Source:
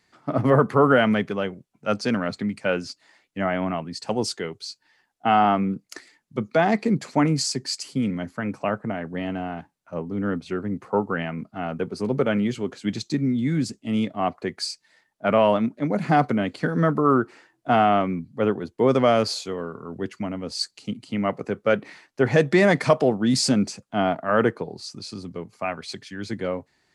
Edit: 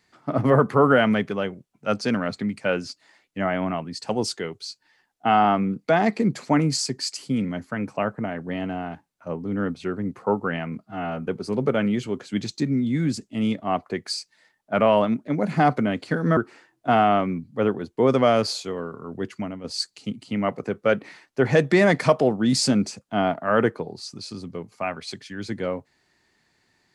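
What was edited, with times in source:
5.88–6.54 s: delete
11.50–11.78 s: stretch 1.5×
16.89–17.18 s: delete
20.20–20.45 s: fade out, to -7.5 dB

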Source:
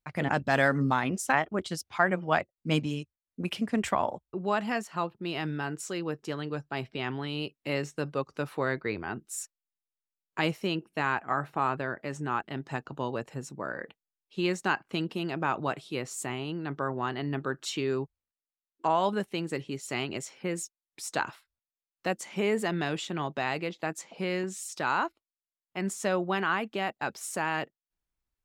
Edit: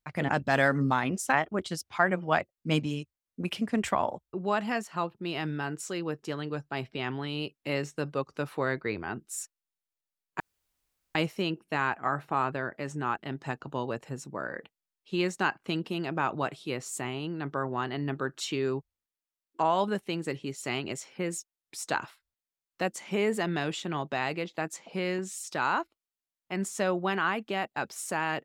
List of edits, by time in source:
10.40 s: insert room tone 0.75 s

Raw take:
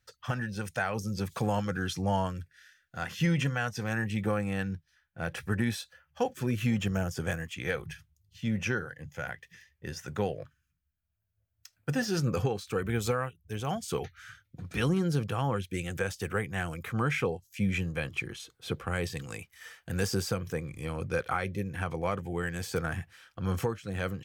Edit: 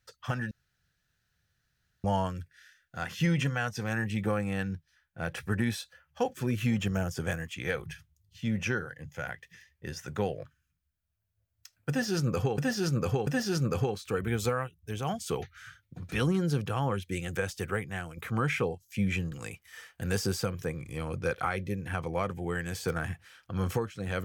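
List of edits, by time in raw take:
0.51–2.04 s: room tone
11.89–12.58 s: loop, 3 plays
16.15–16.79 s: fade out equal-power, to -8.5 dB
17.94–19.20 s: delete

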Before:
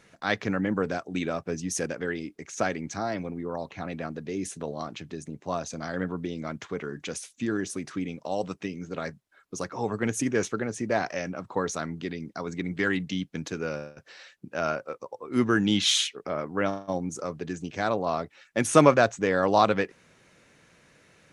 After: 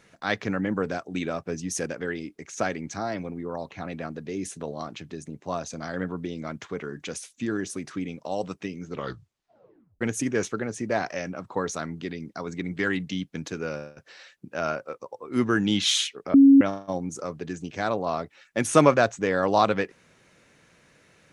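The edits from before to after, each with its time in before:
8.86 s: tape stop 1.15 s
16.34–16.61 s: bleep 275 Hz -9.5 dBFS

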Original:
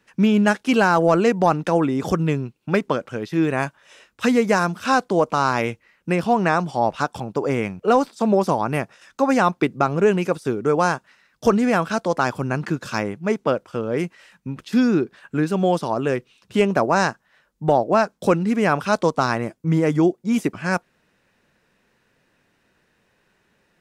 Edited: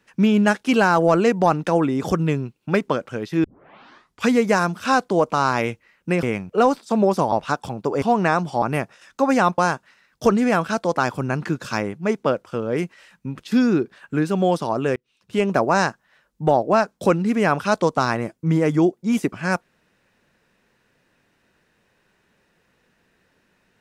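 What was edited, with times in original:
3.44 s: tape start 0.85 s
6.23–6.83 s: swap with 7.53–8.62 s
9.58–10.79 s: delete
16.17–16.76 s: fade in

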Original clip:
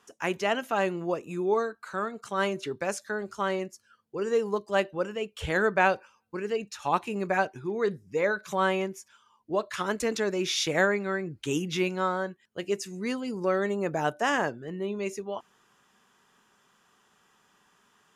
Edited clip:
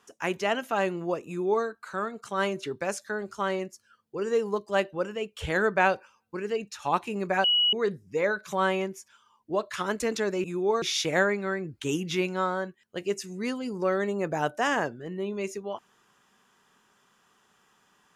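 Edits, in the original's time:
1.27–1.65 s: copy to 10.44 s
7.44–7.73 s: bleep 2.92 kHz -19.5 dBFS

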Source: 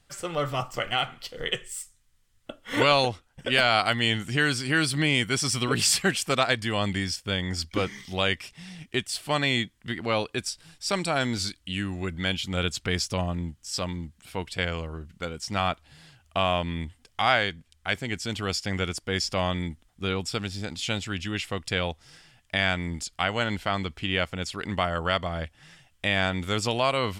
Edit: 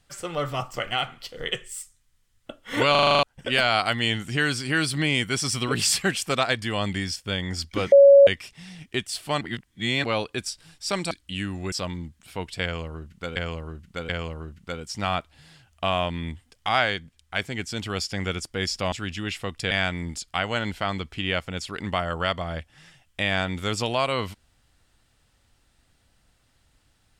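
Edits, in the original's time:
2.91 s: stutter in place 0.04 s, 8 plays
7.92–8.27 s: bleep 559 Hz -8 dBFS
9.41–10.04 s: reverse
11.11–11.49 s: delete
12.10–13.71 s: delete
14.62–15.35 s: loop, 3 plays
19.45–21.00 s: delete
21.79–22.56 s: delete

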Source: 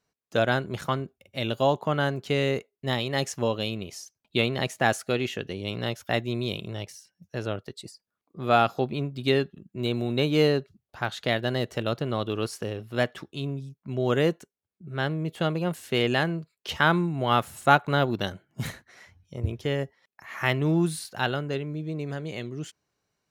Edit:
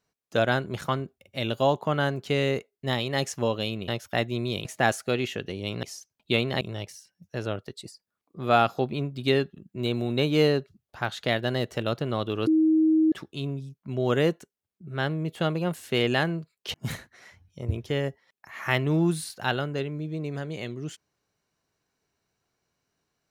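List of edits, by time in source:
3.88–4.66 s: swap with 5.84–6.61 s
12.47–13.12 s: bleep 316 Hz -17 dBFS
16.74–18.49 s: delete

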